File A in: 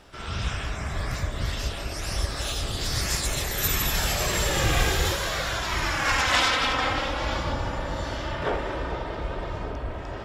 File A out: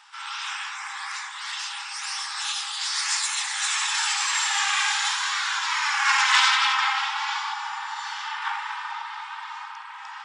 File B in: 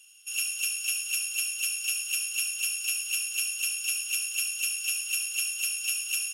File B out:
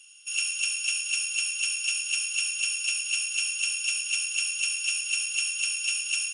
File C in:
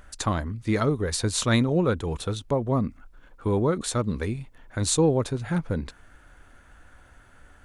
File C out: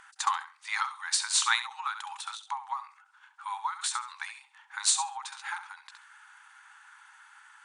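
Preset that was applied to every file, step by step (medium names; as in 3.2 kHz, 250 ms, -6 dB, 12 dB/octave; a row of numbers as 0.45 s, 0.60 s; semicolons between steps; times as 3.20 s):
flutter echo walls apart 11.5 m, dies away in 0.29 s; FFT band-pass 780–9900 Hz; endings held to a fixed fall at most 150 dB/s; trim +3.5 dB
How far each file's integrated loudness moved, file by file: +2.5 LU, +1.5 LU, -5.0 LU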